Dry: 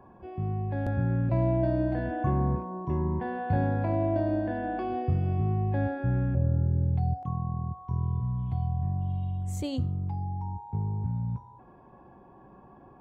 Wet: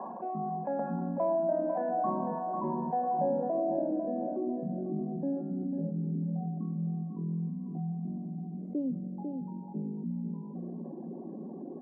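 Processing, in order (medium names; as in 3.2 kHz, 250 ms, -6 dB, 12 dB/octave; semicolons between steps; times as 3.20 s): reverb removal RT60 1.6 s; reverse; upward compressor, threshold -45 dBFS; reverse; band-passed feedback delay 98 ms, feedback 80%, band-pass 480 Hz, level -23.5 dB; low-pass sweep 1 kHz -> 330 Hz, 2.87–4.60 s; tempo 1.1×; rippled Chebyshev high-pass 160 Hz, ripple 9 dB; feedback delay 497 ms, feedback 30%, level -10 dB; level flattener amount 50%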